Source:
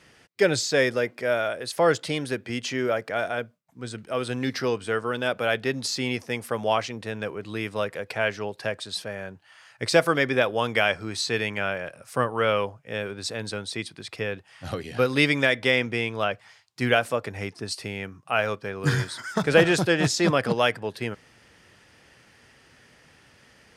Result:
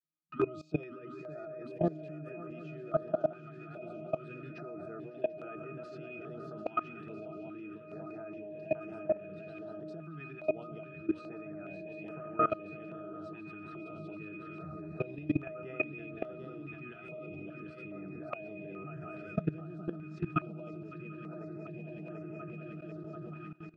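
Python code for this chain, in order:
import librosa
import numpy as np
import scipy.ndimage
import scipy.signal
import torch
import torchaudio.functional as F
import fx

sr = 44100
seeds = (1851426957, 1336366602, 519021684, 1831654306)

p1 = fx.tape_start_head(x, sr, length_s=0.61)
p2 = fx.high_shelf(p1, sr, hz=3500.0, db=-10.5)
p3 = fx.octave_resonator(p2, sr, note='D#', decay_s=0.23)
p4 = fx.over_compress(p3, sr, threshold_db=-39.0, ratio=-1.0)
p5 = scipy.signal.sosfilt(scipy.signal.butter(4, 130.0, 'highpass', fs=sr, output='sos'), p4)
p6 = fx.peak_eq(p5, sr, hz=850.0, db=-4.0, octaves=0.62)
p7 = p6 + fx.echo_swing(p6, sr, ms=740, ratio=3, feedback_pct=69, wet_db=-8.0, dry=0)
p8 = fx.level_steps(p7, sr, step_db=19)
p9 = fx.filter_held_notch(p8, sr, hz=2.4, low_hz=560.0, high_hz=4000.0)
y = p9 * librosa.db_to_amplitude(14.0)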